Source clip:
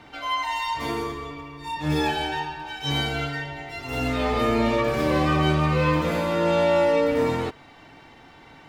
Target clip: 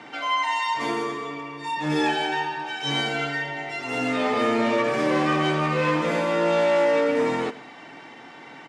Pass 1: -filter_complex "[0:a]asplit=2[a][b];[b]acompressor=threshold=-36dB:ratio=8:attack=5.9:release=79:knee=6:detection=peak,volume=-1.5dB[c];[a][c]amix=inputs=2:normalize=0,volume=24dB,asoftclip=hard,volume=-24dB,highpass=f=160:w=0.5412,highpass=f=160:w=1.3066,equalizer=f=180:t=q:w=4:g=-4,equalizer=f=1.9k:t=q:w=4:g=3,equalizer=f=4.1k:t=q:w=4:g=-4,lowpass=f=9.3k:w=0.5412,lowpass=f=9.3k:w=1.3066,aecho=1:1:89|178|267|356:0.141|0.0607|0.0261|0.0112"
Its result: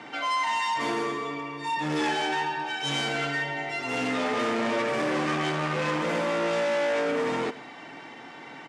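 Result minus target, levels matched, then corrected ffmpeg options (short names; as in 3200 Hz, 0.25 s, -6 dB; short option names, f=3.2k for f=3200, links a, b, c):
overloaded stage: distortion +11 dB
-filter_complex "[0:a]asplit=2[a][b];[b]acompressor=threshold=-36dB:ratio=8:attack=5.9:release=79:knee=6:detection=peak,volume=-1.5dB[c];[a][c]amix=inputs=2:normalize=0,volume=15.5dB,asoftclip=hard,volume=-15.5dB,highpass=f=160:w=0.5412,highpass=f=160:w=1.3066,equalizer=f=180:t=q:w=4:g=-4,equalizer=f=1.9k:t=q:w=4:g=3,equalizer=f=4.1k:t=q:w=4:g=-4,lowpass=f=9.3k:w=0.5412,lowpass=f=9.3k:w=1.3066,aecho=1:1:89|178|267|356:0.141|0.0607|0.0261|0.0112"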